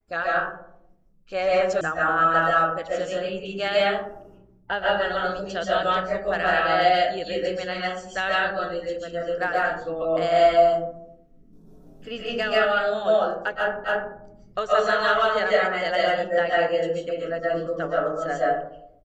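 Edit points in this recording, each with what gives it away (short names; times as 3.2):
1.81 sound cut off
13.84 repeat of the last 0.28 s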